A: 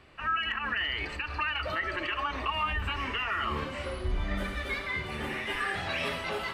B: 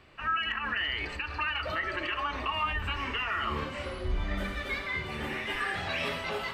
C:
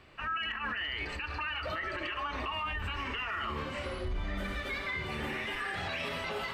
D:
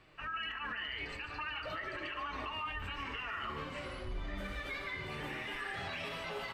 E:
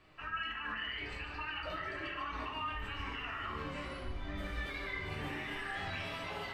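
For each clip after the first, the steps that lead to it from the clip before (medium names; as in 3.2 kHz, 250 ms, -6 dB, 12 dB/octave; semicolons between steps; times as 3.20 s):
peaking EQ 10 kHz -5.5 dB 0.28 oct; de-hum 66.71 Hz, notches 30
peak limiter -27 dBFS, peak gain reduction 7.5 dB
flange 1.3 Hz, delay 6.2 ms, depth 1.3 ms, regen -47%; delay 146 ms -11 dB; trim -1 dB
reverberation RT60 0.70 s, pre-delay 3 ms, DRR 0 dB; trim -3 dB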